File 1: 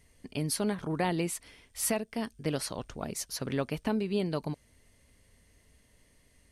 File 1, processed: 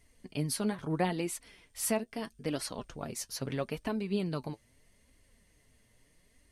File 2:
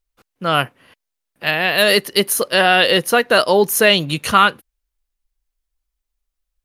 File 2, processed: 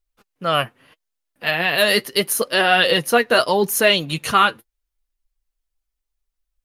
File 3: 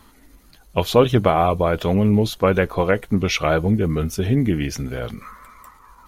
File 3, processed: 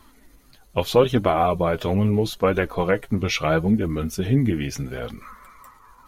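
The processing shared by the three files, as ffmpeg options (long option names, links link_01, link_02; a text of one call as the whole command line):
ffmpeg -i in.wav -af "flanger=delay=2.7:depth=6.6:regen=41:speed=0.77:shape=triangular,volume=1.5dB" out.wav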